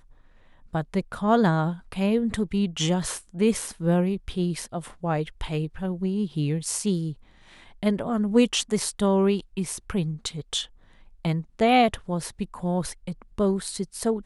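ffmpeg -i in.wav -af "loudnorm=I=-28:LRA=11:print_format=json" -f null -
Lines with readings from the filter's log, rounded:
"input_i" : "-25.8",
"input_tp" : "-7.7",
"input_lra" : "2.9",
"input_thresh" : "-36.2",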